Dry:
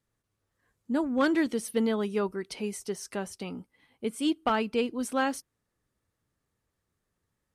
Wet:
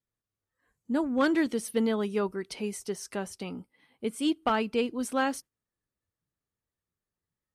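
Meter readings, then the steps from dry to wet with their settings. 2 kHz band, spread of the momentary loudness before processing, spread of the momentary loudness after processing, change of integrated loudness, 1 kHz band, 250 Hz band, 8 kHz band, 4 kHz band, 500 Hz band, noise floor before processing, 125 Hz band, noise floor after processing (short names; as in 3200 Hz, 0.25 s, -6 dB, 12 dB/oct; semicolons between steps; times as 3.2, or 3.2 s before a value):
0.0 dB, 12 LU, 12 LU, 0.0 dB, 0.0 dB, 0.0 dB, 0.0 dB, 0.0 dB, 0.0 dB, -82 dBFS, 0.0 dB, under -85 dBFS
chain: spectral noise reduction 11 dB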